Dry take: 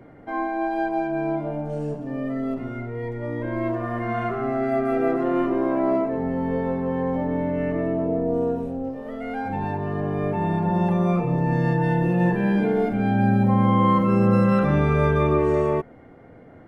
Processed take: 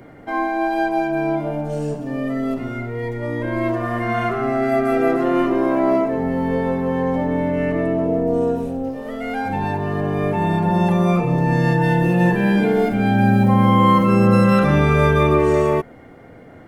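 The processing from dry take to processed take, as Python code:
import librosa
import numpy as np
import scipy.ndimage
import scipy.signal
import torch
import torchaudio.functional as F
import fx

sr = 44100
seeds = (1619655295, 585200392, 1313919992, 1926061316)

y = fx.high_shelf(x, sr, hz=2900.0, db=11.5)
y = y * 10.0 ** (4.0 / 20.0)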